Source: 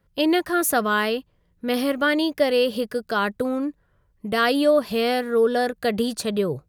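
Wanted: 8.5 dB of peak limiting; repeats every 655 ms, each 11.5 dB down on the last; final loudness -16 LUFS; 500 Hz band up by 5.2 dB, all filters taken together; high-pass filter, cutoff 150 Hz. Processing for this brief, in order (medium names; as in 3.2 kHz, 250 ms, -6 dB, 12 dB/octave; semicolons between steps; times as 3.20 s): high-pass 150 Hz; peaking EQ 500 Hz +6 dB; peak limiter -12.5 dBFS; feedback delay 655 ms, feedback 27%, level -11.5 dB; trim +5.5 dB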